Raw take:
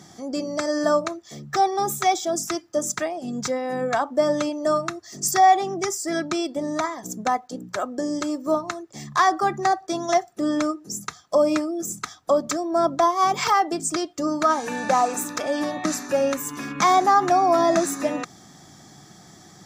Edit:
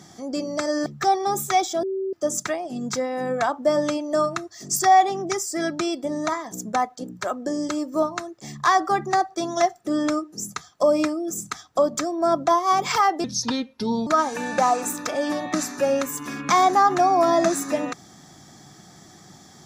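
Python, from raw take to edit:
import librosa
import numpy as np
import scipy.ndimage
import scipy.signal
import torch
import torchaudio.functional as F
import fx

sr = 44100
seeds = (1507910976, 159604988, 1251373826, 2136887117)

y = fx.edit(x, sr, fx.cut(start_s=0.86, length_s=0.52),
    fx.bleep(start_s=2.35, length_s=0.3, hz=384.0, db=-23.5),
    fx.speed_span(start_s=13.76, length_s=0.62, speed=0.75), tone=tone)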